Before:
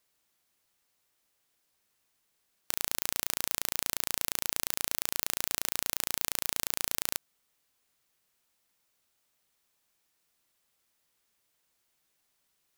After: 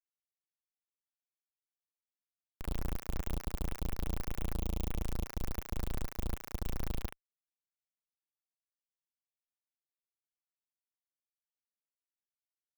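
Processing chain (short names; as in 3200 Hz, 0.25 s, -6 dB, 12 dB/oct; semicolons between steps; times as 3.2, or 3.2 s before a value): Doppler pass-by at 4.38, 7 m/s, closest 6.3 m; pre-echo 43 ms -15.5 dB; Schmitt trigger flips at -59 dBFS; gain +10.5 dB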